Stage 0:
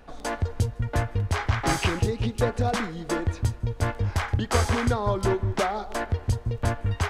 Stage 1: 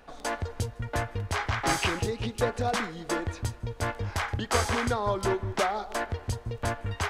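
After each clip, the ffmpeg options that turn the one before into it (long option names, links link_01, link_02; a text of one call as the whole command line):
ffmpeg -i in.wav -af "lowshelf=frequency=300:gain=-8" out.wav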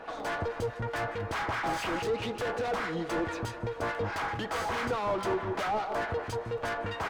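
ffmpeg -i in.wav -filter_complex "[0:a]aecho=1:1:6.2:0.32,asplit=2[link_01][link_02];[link_02]highpass=frequency=720:poles=1,volume=33dB,asoftclip=type=tanh:threshold=-10.5dB[link_03];[link_01][link_03]amix=inputs=2:normalize=0,lowpass=frequency=1100:poles=1,volume=-6dB,acrossover=split=1200[link_04][link_05];[link_04]aeval=exprs='val(0)*(1-0.5/2+0.5/2*cos(2*PI*4.7*n/s))':channel_layout=same[link_06];[link_05]aeval=exprs='val(0)*(1-0.5/2-0.5/2*cos(2*PI*4.7*n/s))':channel_layout=same[link_07];[link_06][link_07]amix=inputs=2:normalize=0,volume=-8.5dB" out.wav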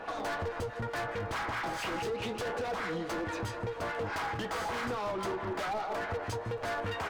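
ffmpeg -i in.wav -af "acompressor=threshold=-33dB:ratio=10,flanger=delay=9.7:depth=6.9:regen=60:speed=0.31:shape=sinusoidal,aeval=exprs='0.0168*(abs(mod(val(0)/0.0168+3,4)-2)-1)':channel_layout=same,volume=6.5dB" out.wav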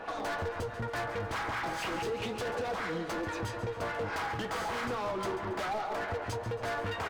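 ffmpeg -i in.wav -af "aecho=1:1:138|276|414|552:0.224|0.0895|0.0358|0.0143" out.wav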